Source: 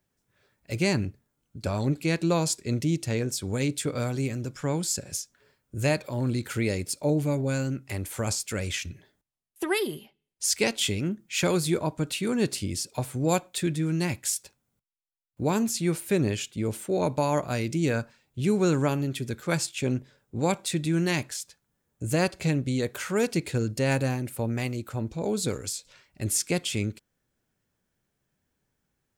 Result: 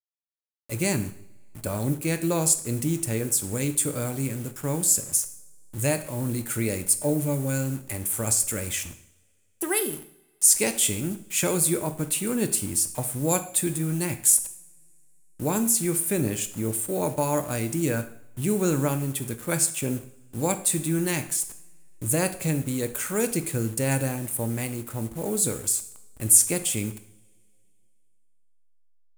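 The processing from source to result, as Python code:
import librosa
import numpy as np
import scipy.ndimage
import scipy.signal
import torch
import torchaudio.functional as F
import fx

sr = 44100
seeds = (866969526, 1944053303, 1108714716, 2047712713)

y = fx.delta_hold(x, sr, step_db=-41.0)
y = fx.high_shelf_res(y, sr, hz=6800.0, db=12.0, q=1.5)
y = fx.rev_double_slope(y, sr, seeds[0], early_s=0.62, late_s=2.7, knee_db=-27, drr_db=8.5)
y = y * librosa.db_to_amplitude(-1.0)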